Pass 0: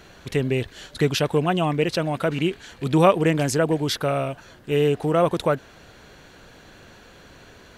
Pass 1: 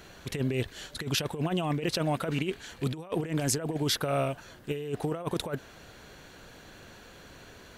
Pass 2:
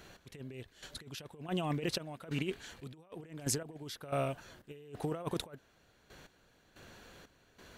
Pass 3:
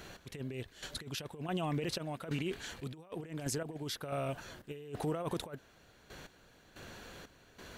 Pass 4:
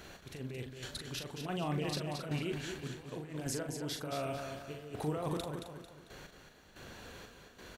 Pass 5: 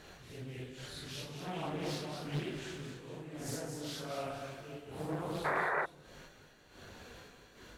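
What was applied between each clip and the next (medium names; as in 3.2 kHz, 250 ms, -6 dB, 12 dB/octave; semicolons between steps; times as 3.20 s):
treble shelf 8.4 kHz +6.5 dB; compressor with a negative ratio -23 dBFS, ratio -0.5; trim -6 dB
trance gate "x....x...xxx..xx" 91 bpm -12 dB; trim -5 dB
peak limiter -32 dBFS, peak gain reduction 11 dB; trim +5 dB
doubling 40 ms -6.5 dB; feedback delay 223 ms, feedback 40%, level -6.5 dB; trim -1.5 dB
phase randomisation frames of 200 ms; painted sound noise, 5.44–5.86 s, 360–2000 Hz -31 dBFS; loudspeaker Doppler distortion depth 0.78 ms; trim -2 dB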